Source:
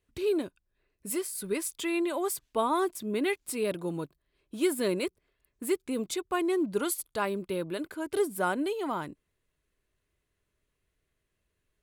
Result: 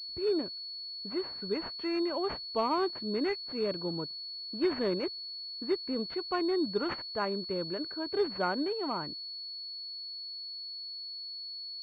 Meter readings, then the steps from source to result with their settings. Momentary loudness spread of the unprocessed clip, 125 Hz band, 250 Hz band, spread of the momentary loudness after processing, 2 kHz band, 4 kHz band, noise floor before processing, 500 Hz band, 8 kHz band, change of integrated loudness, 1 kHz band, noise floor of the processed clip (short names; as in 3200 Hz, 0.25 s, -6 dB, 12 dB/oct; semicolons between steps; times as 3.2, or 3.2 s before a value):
8 LU, -2.0 dB, -2.0 dB, 8 LU, -4.5 dB, +9.0 dB, -81 dBFS, -2.0 dB, under -30 dB, -2.5 dB, -2.0 dB, -42 dBFS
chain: low-pass opened by the level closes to 1200 Hz, open at -25.5 dBFS; pulse-width modulation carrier 4400 Hz; gain -2 dB